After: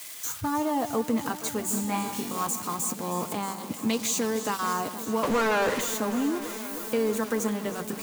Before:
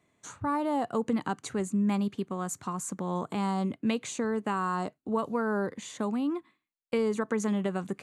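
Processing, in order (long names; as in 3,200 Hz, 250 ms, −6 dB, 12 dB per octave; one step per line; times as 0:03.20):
spike at every zero crossing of −29.5 dBFS
0:03.89–0:04.73: parametric band 5,000 Hz +6.5 dB 1.4 octaves
in parallel at −2 dB: output level in coarse steps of 18 dB
on the sum: notch comb filter 190 Hz
0:01.66–0:02.47: flutter between parallel walls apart 3.6 metres, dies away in 0.6 s
0:05.23–0:05.81: mid-hump overdrive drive 35 dB, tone 2,000 Hz, clips at −17 dBFS
on a send: delay that swaps between a low-pass and a high-pass 157 ms, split 2,100 Hz, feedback 89%, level −12.5 dB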